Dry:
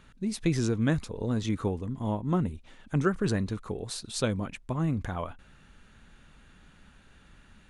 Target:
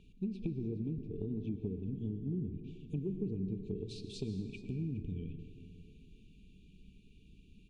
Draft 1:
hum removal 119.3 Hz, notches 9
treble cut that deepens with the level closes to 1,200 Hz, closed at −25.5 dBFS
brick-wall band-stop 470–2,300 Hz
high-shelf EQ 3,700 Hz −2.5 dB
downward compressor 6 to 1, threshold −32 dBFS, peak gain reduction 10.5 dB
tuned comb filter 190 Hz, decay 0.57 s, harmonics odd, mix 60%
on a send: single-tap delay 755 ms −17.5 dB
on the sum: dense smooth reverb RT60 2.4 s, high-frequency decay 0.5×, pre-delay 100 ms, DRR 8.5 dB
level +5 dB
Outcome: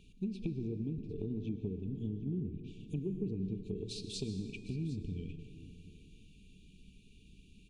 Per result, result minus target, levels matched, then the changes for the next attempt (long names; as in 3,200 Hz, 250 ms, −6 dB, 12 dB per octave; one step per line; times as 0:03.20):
echo 339 ms late; 8,000 Hz band +9.0 dB
change: single-tap delay 416 ms −17.5 dB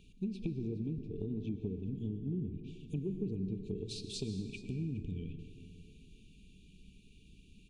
8,000 Hz band +8.5 dB
change: high-shelf EQ 3,700 Hz −14 dB